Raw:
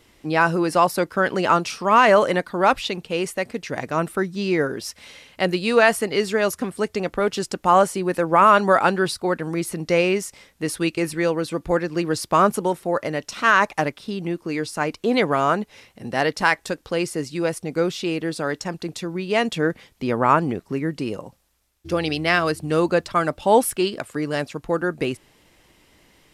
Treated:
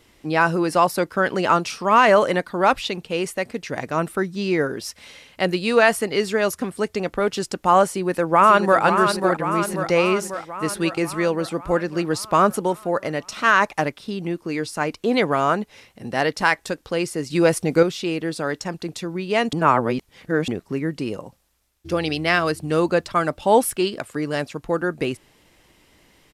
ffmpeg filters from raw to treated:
-filter_complex "[0:a]asplit=2[s0][s1];[s1]afade=t=in:st=7.89:d=0.01,afade=t=out:st=8.82:d=0.01,aecho=0:1:540|1080|1620|2160|2700|3240|3780|4320|4860:0.473151|0.307548|0.199906|0.129939|0.0844605|0.0548993|0.0356845|0.023195|0.0150767[s2];[s0][s2]amix=inputs=2:normalize=0,asettb=1/sr,asplit=3[s3][s4][s5];[s3]atrim=end=17.304[s6];[s4]atrim=start=17.3:end=17.83,asetpts=PTS-STARTPTS,afade=t=in:d=0.004:c=qsin,afade=t=out:st=0.526:d=0.004:c=qsin,acontrast=79[s7];[s5]atrim=start=17.826[s8];[s6][s7]acrossfade=d=0.004:c1=hsin:c2=qsin[s9];[s9][s8]acrossfade=d=0.004:c1=qsin:c2=hsin,asplit=3[s10][s11][s12];[s10]atrim=end=19.532[s13];[s11]atrim=start=19.528:end=20.482,asetpts=PTS-STARTPTS,areverse[s14];[s12]atrim=start=20.478[s15];[s13][s14]acrossfade=d=0.004:c1=hsin:c2=hsin[s16];[s16][s15]acrossfade=d=0.004:c1=hsin:c2=hsin"

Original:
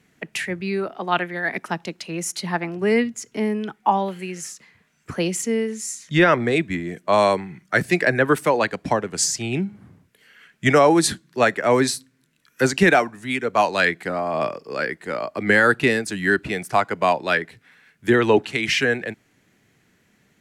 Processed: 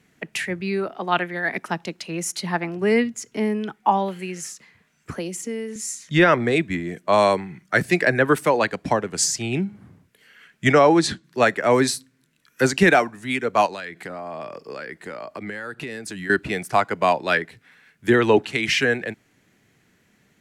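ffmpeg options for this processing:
-filter_complex "[0:a]asettb=1/sr,asplit=3[s0][s1][s2];[s0]atrim=end=5.124[s3];[s1]atrim=start=5.12:end=5.76,asetpts=PTS-STARTPTS,afade=t=in:d=0.004:c=qsin,afade=t=out:st=0.636:d=0.004:c=qsin,acrossover=split=180|750|6700[s4][s5][s6][s7];[s4]acompressor=threshold=0.00447:ratio=3[s8];[s5]acompressor=threshold=0.0316:ratio=3[s9];[s6]acompressor=threshold=0.00891:ratio=3[s10];[s7]acompressor=threshold=0.0178:ratio=3[s11];[s8][s9][s10][s11]amix=inputs=4:normalize=0[s12];[s2]atrim=start=5.756[s13];[s3][s12]acrossfade=d=0.004:c1=hsin:c2=qsin[s14];[s14][s13]acrossfade=d=0.004:c1=qsin:c2=hsin,asettb=1/sr,asplit=3[s15][s16][s17];[s15]atrim=end=10.724[s18];[s16]atrim=start=10.72:end=11.24,asetpts=PTS-STARTPTS,afade=t=in:d=0.004:c=qsin,afade=t=out:st=0.516:d=0.004:c=qsin,lowpass=5700[s19];[s17]atrim=start=11.236[s20];[s18][s19]acrossfade=d=0.004:c1=hsin:c2=qsin[s21];[s21][s20]acrossfade=d=0.004:c1=qsin:c2=hsin,asettb=1/sr,asplit=3[s22][s23][s24];[s22]atrim=end=13.664[s25];[s23]atrim=start=13.66:end=16.3,asetpts=PTS-STARTPTS,afade=t=in:d=0.004:c=qsin,afade=t=out:st=2.636:d=0.004:c=qsin,acompressor=threshold=0.0355:ratio=8:attack=3.2:release=140:knee=1:detection=peak[s26];[s24]atrim=start=16.296[s27];[s25][s26]acrossfade=d=0.004:c1=hsin:c2=qsin[s28];[s28][s27]acrossfade=d=0.004:c1=qsin:c2=hsin"

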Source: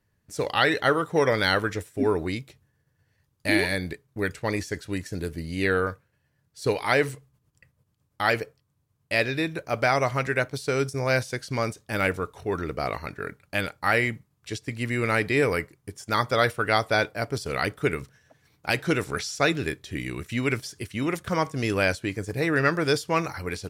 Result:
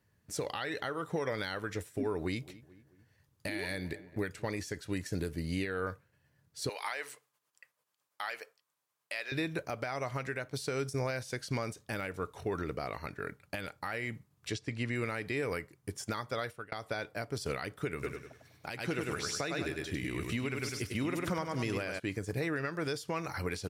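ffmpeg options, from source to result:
-filter_complex "[0:a]asettb=1/sr,asplit=3[s0][s1][s2];[s0]atrim=end=2.194[s3];[s1]atrim=start=2.19:end=4.54,asetpts=PTS-STARTPTS,afade=t=in:d=0.004:c=qsin,afade=t=out:st=2.346:d=0.004:c=qsin,asplit=2[s4][s5];[s5]adelay=219,lowpass=f=1800:p=1,volume=0.0841,asplit=2[s6][s7];[s7]adelay=219,lowpass=f=1800:p=1,volume=0.44,asplit=2[s8][s9];[s9]adelay=219,lowpass=f=1800:p=1,volume=0.44[s10];[s4][s6][s8][s10]amix=inputs=4:normalize=0,atrim=end_sample=103635[s11];[s2]atrim=start=4.536[s12];[s3][s11]acrossfade=d=0.004:c1=hsin:c2=qsin[s13];[s13][s12]acrossfade=d=0.004:c1=qsin:c2=hsin,asettb=1/sr,asplit=3[s14][s15][s16];[s14]atrim=end=6.694[s17];[s15]atrim=start=6.69:end=9.32,asetpts=PTS-STARTPTS,afade=t=in:d=0.004:c=qsin,afade=t=out:st=2.626:d=0.004:c=qsin,highpass=790[s18];[s16]atrim=start=9.316[s19];[s17][s18]acrossfade=d=0.004:c1=hsin:c2=qsin[s20];[s20][s19]acrossfade=d=0.004:c1=qsin:c2=hsin,asettb=1/sr,asplit=3[s21][s22][s23];[s21]atrim=end=14.514[s24];[s22]atrim=start=14.51:end=14.95,asetpts=PTS-STARTPTS,afade=t=in:d=0.004:c=qsin,afade=t=out:st=0.436:d=0.004:c=qsin,lowpass=6300[s25];[s23]atrim=start=14.946[s26];[s24][s25]acrossfade=d=0.004:c1=hsin:c2=qsin[s27];[s27][s26]acrossfade=d=0.004:c1=qsin:c2=hsin,asplit=3[s28][s29][s30];[s28]afade=t=out:st=18.02:d=0.02[s31];[s29]aecho=1:1:100|200|300|400:0.562|0.197|0.0689|0.0241,afade=t=in:st=18.02:d=0.02,afade=t=out:st=21.98:d=0.02[s32];[s30]afade=t=in:st=21.98:d=0.02[s33];[s31][s32][s33]amix=inputs=3:normalize=0,asplit=2[s34][s35];[s34]atrim=end=16.72,asetpts=PTS-STARTPTS,afade=t=out:st=16.09:d=0.63[s36];[s35]atrim=start=16.72,asetpts=PTS-STARTPTS,afade=t=in:d=0.004:c=hsin[s37];[s36][s37]concat=n=2:v=0:a=1,acompressor=threshold=0.0501:ratio=6,highpass=57,alimiter=limit=0.0631:level=0:latency=1:release=395"

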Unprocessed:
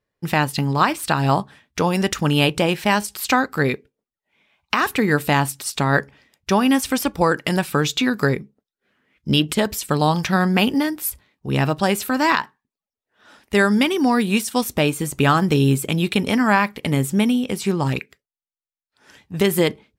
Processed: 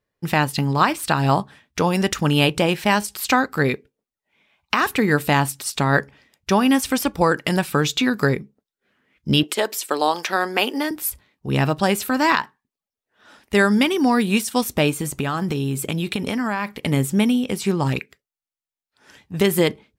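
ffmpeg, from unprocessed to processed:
-filter_complex "[0:a]asettb=1/sr,asplit=3[s0][s1][s2];[s0]atrim=end=9.434[s3];[s1]atrim=start=9.43:end=10.91,asetpts=PTS-STARTPTS,afade=t=in:d=0.004:c=qsin,afade=t=out:st=1.476:d=0.004:c=qsin,highpass=f=320:w=0.5412,highpass=f=320:w=1.3066[s4];[s2]atrim=start=10.906[s5];[s3][s4]acrossfade=d=0.004:c1=hsin:c2=qsin[s6];[s6][s5]acrossfade=d=0.004:c1=qsin:c2=hsin,asettb=1/sr,asplit=3[s7][s8][s9];[s7]atrim=end=14.984[s10];[s8]atrim=start=14.98:end=16.7,asetpts=PTS-STARTPTS,afade=t=in:d=0.004:c=qsin,afade=t=out:st=1.716:d=0.004:c=qsin,acompressor=threshold=0.112:ratio=6:attack=3.2:release=140:knee=1:detection=peak[s11];[s9]atrim=start=16.696[s12];[s10][s11]acrossfade=d=0.004:c1=hsin:c2=qsin[s13];[s13][s12]acrossfade=d=0.004:c1=qsin:c2=hsin"

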